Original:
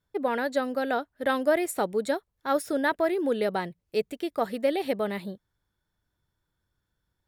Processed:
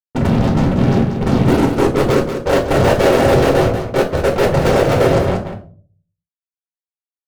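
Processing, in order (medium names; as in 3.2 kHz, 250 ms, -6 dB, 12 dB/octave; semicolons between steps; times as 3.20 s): square wave that keeps the level; noise-vocoded speech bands 4; low-pass sweep 340 Hz -> 1.1 kHz, 1.17–2.72 s; pitch shift -8 st; fuzz box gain 33 dB, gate -40 dBFS; delay 187 ms -8.5 dB; reverberation RT60 0.45 s, pre-delay 7 ms, DRR 2 dB; trim -1.5 dB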